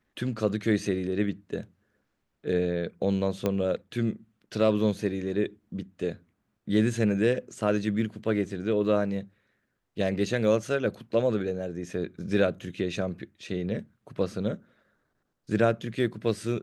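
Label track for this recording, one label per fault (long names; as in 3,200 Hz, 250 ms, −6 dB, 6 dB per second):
3.460000	3.460000	click −14 dBFS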